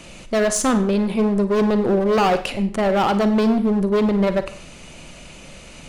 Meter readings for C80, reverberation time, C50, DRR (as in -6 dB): 15.0 dB, 0.45 s, 12.0 dB, 10.0 dB